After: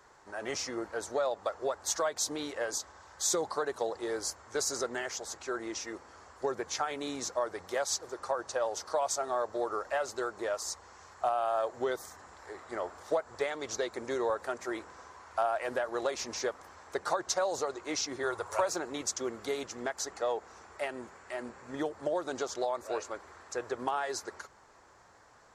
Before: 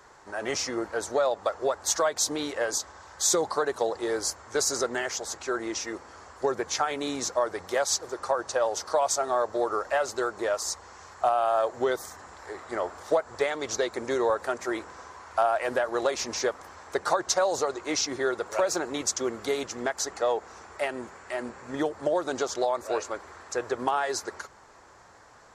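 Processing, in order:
0:18.23–0:18.70: graphic EQ with 15 bands 100 Hz +12 dB, 250 Hz −10 dB, 1,000 Hz +8 dB, 10,000 Hz +9 dB
level −6 dB

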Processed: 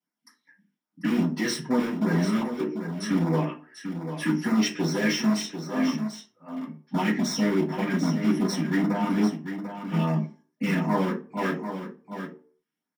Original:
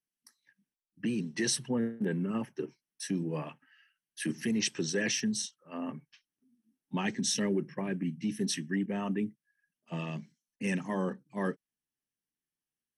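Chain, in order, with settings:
high-pass filter 88 Hz 12 dB per octave
mains-hum notches 50/100/150/200/250/300/350/400/450 Hz
in parallel at −6 dB: wrap-around overflow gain 30 dB
on the sum: auto-filter notch sine 2.5 Hz 670–3,200 Hz
single-tap delay 743 ms −9 dB
convolution reverb RT60 0.40 s, pre-delay 3 ms, DRR −9.5 dB
level −5.5 dB

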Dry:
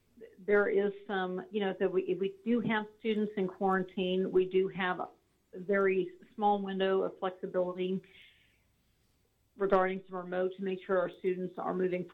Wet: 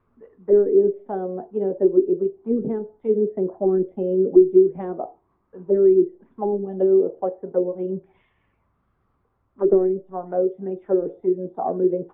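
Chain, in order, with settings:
envelope-controlled low-pass 370–1,200 Hz down, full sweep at −25.5 dBFS
level +3.5 dB

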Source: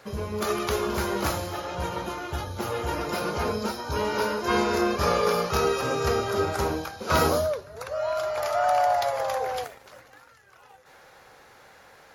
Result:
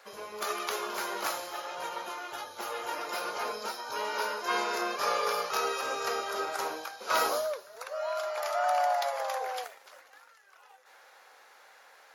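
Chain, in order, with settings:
high-pass filter 630 Hz 12 dB per octave
delay with a high-pass on its return 288 ms, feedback 41%, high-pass 4,000 Hz, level −20.5 dB
level −3 dB

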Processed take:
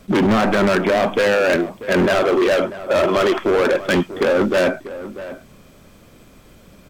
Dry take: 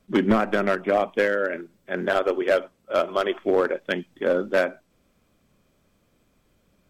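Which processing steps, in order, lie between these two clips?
in parallel at +1 dB: compressor whose output falls as the input rises −27 dBFS, ratio −0.5
on the sum: hard clipping −21 dBFS, distortion −7 dB
slap from a distant wall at 110 metres, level −14 dB
level +8 dB

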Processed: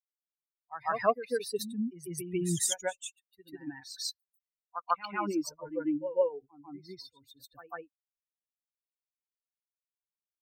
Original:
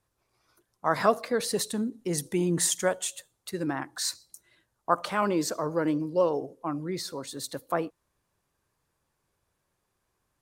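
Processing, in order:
spectral dynamics exaggerated over time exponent 3
backwards echo 145 ms −10 dB

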